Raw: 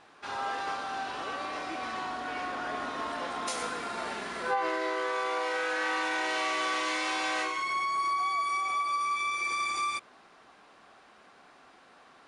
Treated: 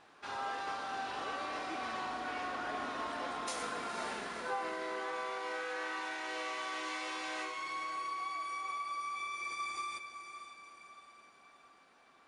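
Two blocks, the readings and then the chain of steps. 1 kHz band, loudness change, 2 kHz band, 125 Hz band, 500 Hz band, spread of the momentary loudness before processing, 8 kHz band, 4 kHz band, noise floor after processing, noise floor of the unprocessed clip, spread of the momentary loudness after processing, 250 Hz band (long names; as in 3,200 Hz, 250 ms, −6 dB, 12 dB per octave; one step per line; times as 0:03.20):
−7.5 dB, −8.0 dB, −8.0 dB, can't be measured, −7.0 dB, 7 LU, −7.5 dB, −7.5 dB, −63 dBFS, −57 dBFS, 8 LU, −6.0 dB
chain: speech leveller within 4 dB
on a send: feedback delay with all-pass diffusion 513 ms, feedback 48%, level −9.5 dB
on the sum: level −8 dB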